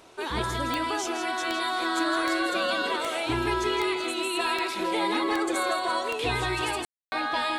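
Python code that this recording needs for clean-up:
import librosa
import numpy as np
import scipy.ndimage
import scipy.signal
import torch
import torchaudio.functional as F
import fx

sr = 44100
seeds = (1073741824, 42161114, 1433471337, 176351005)

y = fx.fix_declick_ar(x, sr, threshold=10.0)
y = fx.fix_ambience(y, sr, seeds[0], print_start_s=0.0, print_end_s=0.5, start_s=6.85, end_s=7.12)
y = fx.fix_echo_inverse(y, sr, delay_ms=163, level_db=-8.5)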